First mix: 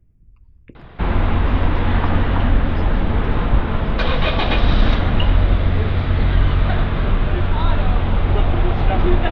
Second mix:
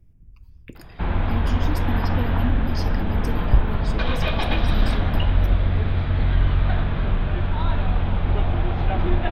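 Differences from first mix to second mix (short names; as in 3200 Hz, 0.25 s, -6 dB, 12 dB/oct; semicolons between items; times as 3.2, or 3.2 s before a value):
speech: remove LPF 2000 Hz 12 dB/oct; first sound -8.0 dB; reverb: on, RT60 1.4 s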